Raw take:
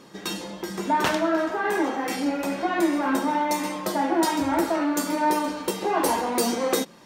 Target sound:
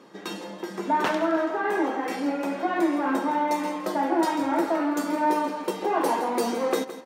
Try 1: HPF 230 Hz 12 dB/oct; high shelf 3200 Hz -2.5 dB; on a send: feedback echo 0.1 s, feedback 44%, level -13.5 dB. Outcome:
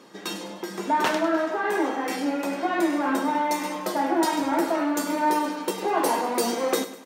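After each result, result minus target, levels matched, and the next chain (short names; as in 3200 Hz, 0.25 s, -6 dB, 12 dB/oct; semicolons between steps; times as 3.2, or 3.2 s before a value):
echo 65 ms early; 8000 Hz band +6.0 dB
HPF 230 Hz 12 dB/oct; high shelf 3200 Hz -2.5 dB; on a send: feedback echo 0.165 s, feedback 44%, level -13.5 dB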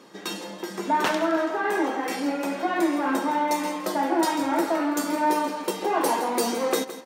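8000 Hz band +6.5 dB
HPF 230 Hz 12 dB/oct; high shelf 3200 Hz -10.5 dB; on a send: feedback echo 0.165 s, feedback 44%, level -13.5 dB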